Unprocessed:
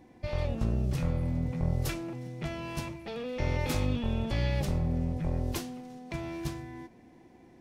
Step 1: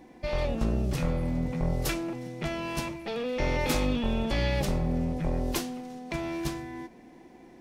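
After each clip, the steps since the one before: bell 98 Hz -14 dB 0.81 oct; gain +5.5 dB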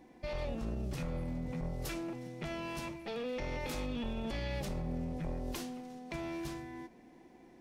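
limiter -23 dBFS, peak gain reduction 8.5 dB; gain -6.5 dB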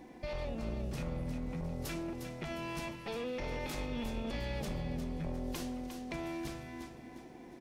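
compressor 1.5:1, threshold -54 dBFS, peak gain reduction 7.5 dB; on a send: feedback echo 0.355 s, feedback 38%, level -8 dB; on the sum: gain +6 dB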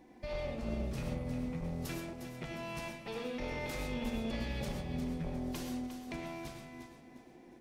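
reverb, pre-delay 3 ms, DRR 3.5 dB; upward expander 1.5:1, over -47 dBFS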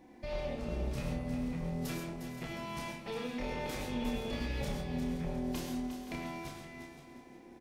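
doubler 29 ms -4 dB; echo 0.524 s -14 dB

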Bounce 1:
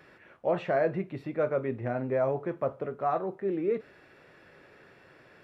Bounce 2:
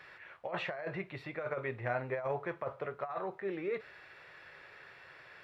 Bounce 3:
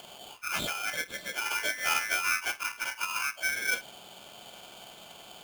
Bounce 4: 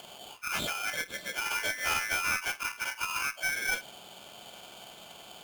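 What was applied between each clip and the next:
ten-band EQ 250 Hz -11 dB, 1000 Hz +5 dB, 2000 Hz +7 dB, 4000 Hz +7 dB; negative-ratio compressor -28 dBFS, ratio -0.5; gain -6 dB
inharmonic rescaling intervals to 81%; polarity switched at an audio rate 1900 Hz; gain +7.5 dB
one-sided clip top -28 dBFS

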